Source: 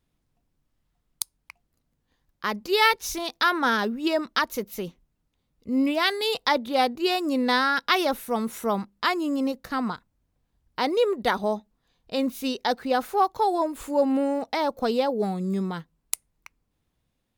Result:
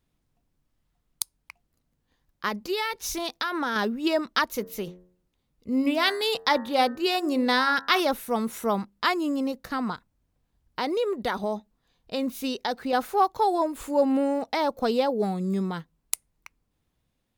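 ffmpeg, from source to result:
-filter_complex "[0:a]asettb=1/sr,asplit=3[a][b][c];[a]atrim=end=2.484[d];[b]atrim=start=2.48:end=3.76,asetpts=PTS-STARTPTS,afade=t=in:d=0.004:c=qsin,afade=t=out:st=1.276:d=0.004:c=qsin,acompressor=threshold=-23dB:ratio=10:attack=3.2:release=140:knee=1:detection=peak[e];[c]atrim=start=3.756[f];[d][e]acrossfade=d=0.004:c1=hsin:c2=qsin[g];[g][f]acrossfade=d=0.004:c1=qsin:c2=hsin,asettb=1/sr,asplit=3[h][i][j];[h]atrim=end=4.534[k];[i]atrim=start=4.53:end=8,asetpts=PTS-STARTPTS,afade=t=in:d=0.004:c=qsin,afade=t=out:st=3.466:d=0.004:c=qsin,bandreject=f=90.19:t=h:w=4,bandreject=f=180.38:t=h:w=4,bandreject=f=270.57:t=h:w=4,bandreject=f=360.76:t=h:w=4,bandreject=f=450.95:t=h:w=4,bandreject=f=541.14:t=h:w=4,bandreject=f=631.33:t=h:w=4,bandreject=f=721.52:t=h:w=4,bandreject=f=811.71:t=h:w=4,bandreject=f=901.9:t=h:w=4,bandreject=f=992.09:t=h:w=4,bandreject=f=1.08228k:t=h:w=4,bandreject=f=1.17247k:t=h:w=4,bandreject=f=1.26266k:t=h:w=4,bandreject=f=1.35285k:t=h:w=4,bandreject=f=1.44304k:t=h:w=4,bandreject=f=1.53323k:t=h:w=4,bandreject=f=1.62342k:t=h:w=4,bandreject=f=1.71361k:t=h:w=4,bandreject=f=1.8038k:t=h:w=4,bandreject=f=1.89399k:t=h:w=4[l];[j]atrim=start=7.996[m];[k][l]acrossfade=d=0.004:c1=hsin:c2=qsin[n];[n][m]acrossfade=d=0.004:c1=qsin:c2=hsin,asettb=1/sr,asplit=3[o][p][q];[o]atrim=end=9.314[r];[p]atrim=start=9.31:end=12.93,asetpts=PTS-STARTPTS,afade=t=in:d=0.004:c=qsin,afade=t=out:st=3.616:d=0.004:c=qsin,acompressor=threshold=-24dB:ratio=2.5:attack=3.2:release=140:knee=1:detection=peak[s];[q]atrim=start=12.926[t];[r][s]acrossfade=d=0.004:c1=hsin:c2=qsin[u];[u][t]acrossfade=d=0.004:c1=qsin:c2=hsin"

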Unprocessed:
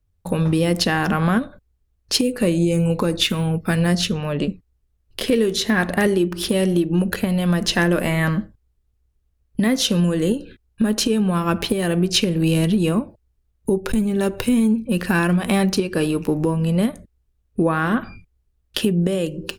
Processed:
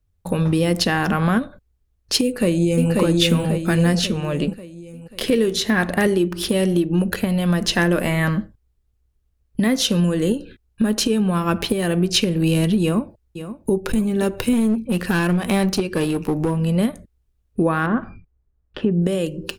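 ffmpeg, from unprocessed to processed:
-filter_complex "[0:a]asplit=2[a][b];[b]afade=t=in:st=2.23:d=0.01,afade=t=out:st=2.91:d=0.01,aecho=0:1:540|1080|1620|2160|2700|3240|3780:0.841395|0.420698|0.210349|0.105174|0.0525872|0.0262936|0.0131468[c];[a][c]amix=inputs=2:normalize=0,asplit=2[d][e];[e]afade=t=in:st=12.82:d=0.01,afade=t=out:st=13.71:d=0.01,aecho=0:1:530|1060|1590|2120:0.251189|0.100475|0.0401902|0.0160761[f];[d][f]amix=inputs=2:normalize=0,asettb=1/sr,asplit=3[g][h][i];[g]atrim=end=14.534[j];[h]atrim=start=14.53:end=16.61,asetpts=PTS-STARTPTS,afade=t=in:d=0.004:c=qsin,afade=t=out:st=2.076:d=0.004:c=qsin,aeval=exprs='clip(val(0),-1,0.126)':c=same[k];[i]atrim=start=16.606[l];[j][k]acrossfade=d=0.004:c1=hsin:c2=qsin[m];[m][l]acrossfade=d=0.004:c1=qsin:c2=hsin,asettb=1/sr,asplit=3[n][o][p];[n]atrim=end=17.864[q];[o]atrim=start=17.86:end=19.02,asetpts=PTS-STARTPTS,afade=t=in:d=0.004:c=qsin,afade=t=out:st=1.156:d=0.004:c=qsin,lowpass=1.5k[r];[p]atrim=start=19.016[s];[q][r]acrossfade=d=0.004:c1=hsin:c2=qsin[t];[t][s]acrossfade=d=0.004:c1=qsin:c2=hsin"

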